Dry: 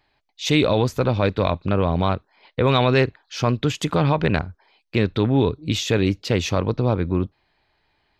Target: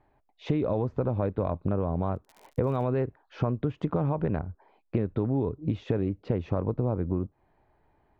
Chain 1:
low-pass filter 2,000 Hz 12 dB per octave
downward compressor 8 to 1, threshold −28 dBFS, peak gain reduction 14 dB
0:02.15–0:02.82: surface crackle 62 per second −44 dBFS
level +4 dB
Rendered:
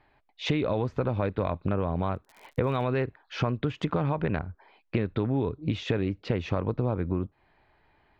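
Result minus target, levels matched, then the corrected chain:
2,000 Hz band +9.5 dB
low-pass filter 920 Hz 12 dB per octave
downward compressor 8 to 1, threshold −28 dBFS, peak gain reduction 13.5 dB
0:02.15–0:02.82: surface crackle 62 per second −44 dBFS
level +4 dB

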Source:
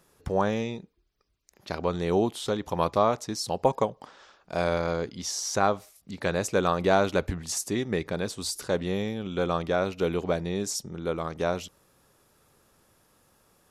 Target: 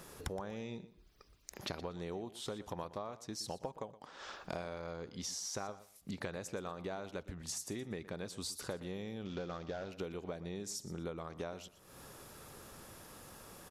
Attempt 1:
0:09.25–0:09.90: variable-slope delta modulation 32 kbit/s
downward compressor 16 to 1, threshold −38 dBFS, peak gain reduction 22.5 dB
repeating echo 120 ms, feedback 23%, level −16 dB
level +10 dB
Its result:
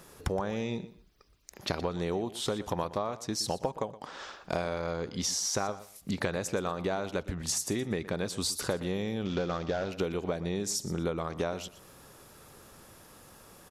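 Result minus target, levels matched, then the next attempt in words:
downward compressor: peak gain reduction −10.5 dB
0:09.25–0:09.90: variable-slope delta modulation 32 kbit/s
downward compressor 16 to 1, threshold −49 dBFS, peak gain reduction 32.5 dB
repeating echo 120 ms, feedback 23%, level −16 dB
level +10 dB

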